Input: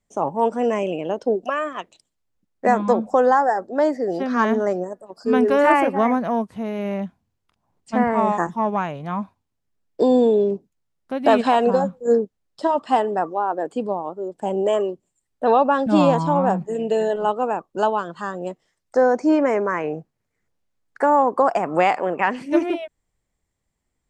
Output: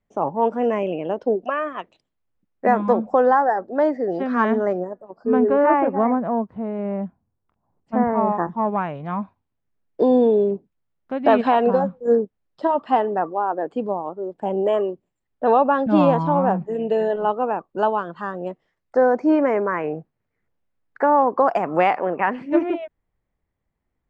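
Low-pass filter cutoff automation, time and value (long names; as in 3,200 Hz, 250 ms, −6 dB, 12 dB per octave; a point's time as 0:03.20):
0:04.71 2,600 Hz
0:05.21 1,200 Hz
0:08.35 1,200 Hz
0:08.98 2,600 Hz
0:21.06 2,600 Hz
0:21.67 4,100 Hz
0:22.07 2,100 Hz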